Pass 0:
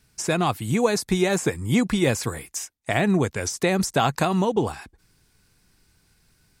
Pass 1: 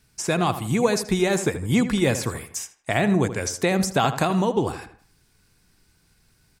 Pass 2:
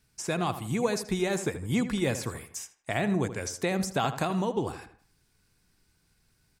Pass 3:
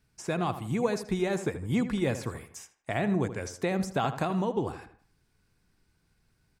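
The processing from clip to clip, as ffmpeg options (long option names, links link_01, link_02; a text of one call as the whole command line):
ffmpeg -i in.wav -filter_complex "[0:a]asplit=2[link_01][link_02];[link_02]adelay=79,lowpass=frequency=2600:poles=1,volume=-11dB,asplit=2[link_03][link_04];[link_04]adelay=79,lowpass=frequency=2600:poles=1,volume=0.4,asplit=2[link_05][link_06];[link_06]adelay=79,lowpass=frequency=2600:poles=1,volume=0.4,asplit=2[link_07][link_08];[link_08]adelay=79,lowpass=frequency=2600:poles=1,volume=0.4[link_09];[link_01][link_03][link_05][link_07][link_09]amix=inputs=5:normalize=0" out.wav
ffmpeg -i in.wav -af "deesser=0.4,volume=-7dB" out.wav
ffmpeg -i in.wav -af "highshelf=frequency=3200:gain=-8.5" out.wav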